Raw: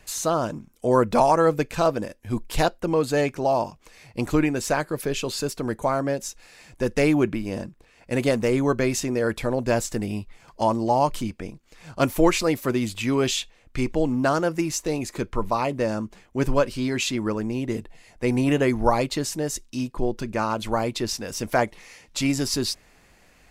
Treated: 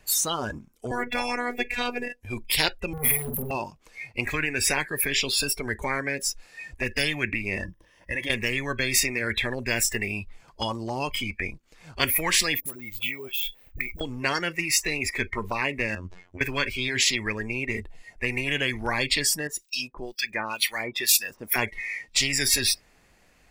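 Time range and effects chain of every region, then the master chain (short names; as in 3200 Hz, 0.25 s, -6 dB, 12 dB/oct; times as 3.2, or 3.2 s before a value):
0.91–2.21 band shelf 500 Hz +9.5 dB + robotiser 244 Hz
2.93–3.51 brick-wall FIR band-stop 240–9400 Hz + overdrive pedal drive 39 dB, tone 3300 Hz, clips at -15.5 dBFS + doubler 47 ms -6 dB
7.64–8.3 ripple EQ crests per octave 1.2, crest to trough 11 dB + compressor, threshold -29 dBFS
12.6–14.01 compressor 12:1, threshold -35 dBFS + dispersion highs, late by 56 ms, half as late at 550 Hz + careless resampling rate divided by 2×, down none, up hold
15.95–16.41 negative-ratio compressor -31 dBFS + robotiser 89.4 Hz + air absorption 74 m
19.47–21.56 tilt +2.5 dB/oct + harmonic tremolo 2.1 Hz, depth 100%, crossover 1400 Hz
whole clip: spectral noise reduction 24 dB; dynamic EQ 710 Hz, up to -6 dB, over -34 dBFS, Q 1.1; spectral compressor 10:1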